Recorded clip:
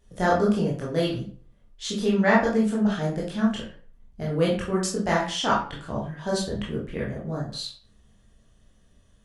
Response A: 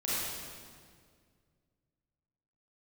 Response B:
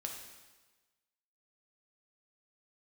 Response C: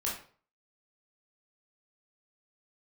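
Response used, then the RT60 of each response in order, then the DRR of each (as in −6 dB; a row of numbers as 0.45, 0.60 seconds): C; 2.0, 1.3, 0.45 seconds; −9.5, 1.0, −5.5 decibels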